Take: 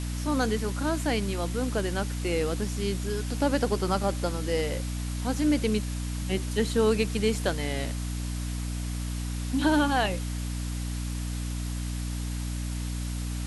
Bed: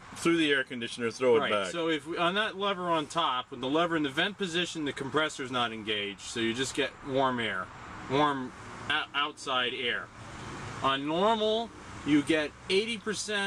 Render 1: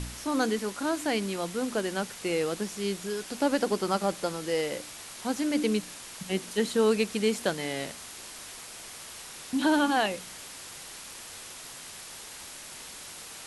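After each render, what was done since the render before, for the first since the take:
hum removal 60 Hz, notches 5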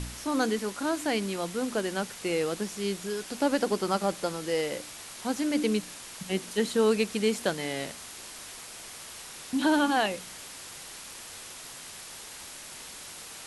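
no processing that can be heard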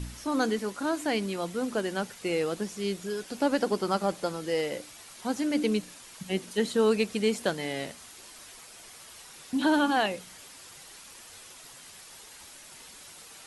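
broadband denoise 7 dB, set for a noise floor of −44 dBFS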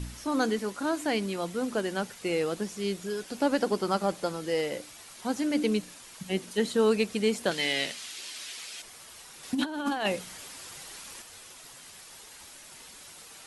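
0:07.51–0:08.82: meter weighting curve D
0:09.43–0:11.22: compressor whose output falls as the input rises −28 dBFS, ratio −0.5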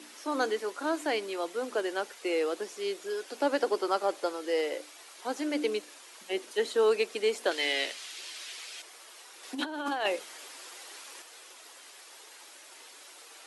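Butterworth high-pass 310 Hz 36 dB per octave
high-shelf EQ 6,300 Hz −6 dB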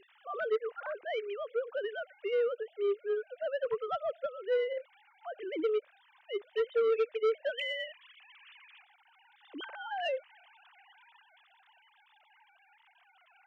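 three sine waves on the formant tracks
soft clipping −23.5 dBFS, distortion −11 dB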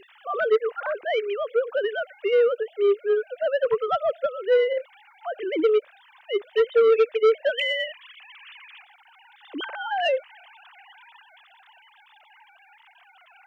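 level +10.5 dB

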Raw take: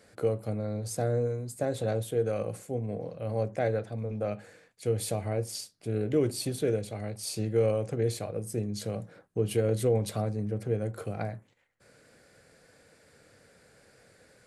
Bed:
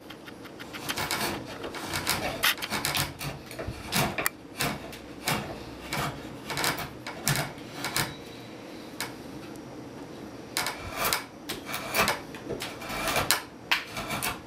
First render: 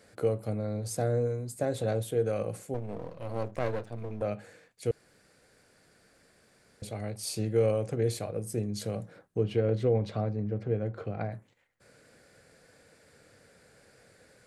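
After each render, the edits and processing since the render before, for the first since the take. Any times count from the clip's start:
0:02.74–0:04.22: gain on one half-wave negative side −12 dB
0:04.91–0:06.82: fill with room tone
0:09.43–0:11.32: high-frequency loss of the air 190 metres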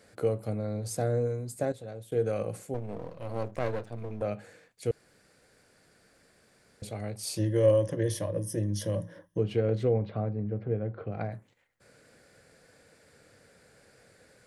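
0:01.72–0:02.12: clip gain −12 dB
0:07.37–0:09.39: EQ curve with evenly spaced ripples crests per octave 1.2, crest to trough 15 dB
0:09.94–0:11.12: high-frequency loss of the air 350 metres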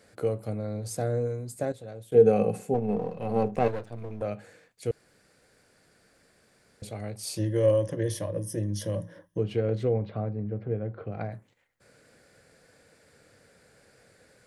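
0:02.14–0:03.68: hollow resonant body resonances 210/430/750/2,600 Hz, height 14 dB, ringing for 40 ms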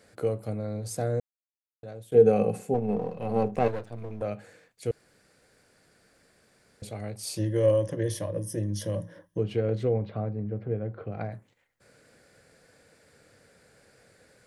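0:01.20–0:01.83: silence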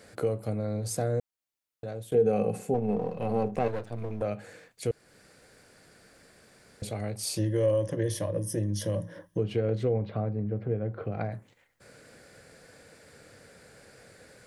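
in parallel at −0.5 dB: brickwall limiter −17.5 dBFS, peak gain reduction 9.5 dB
on the sum: downward compressor 1.5 to 1, threshold −35 dBFS, peak gain reduction 9 dB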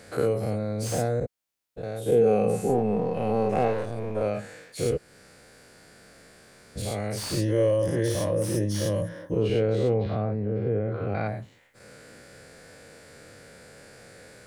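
every bin's largest magnitude spread in time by 120 ms
slew-rate limiting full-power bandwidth 130 Hz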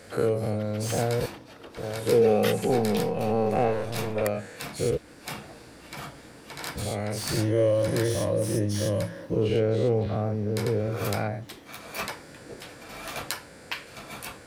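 mix in bed −8.5 dB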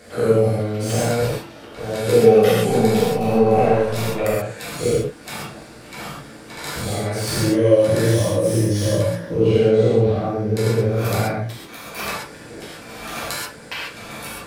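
reverb whose tail is shaped and stops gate 160 ms flat, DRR −6 dB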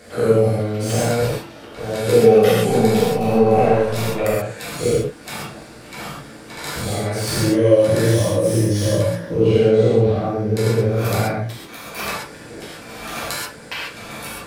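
level +1 dB
brickwall limiter −2 dBFS, peak gain reduction 1.5 dB

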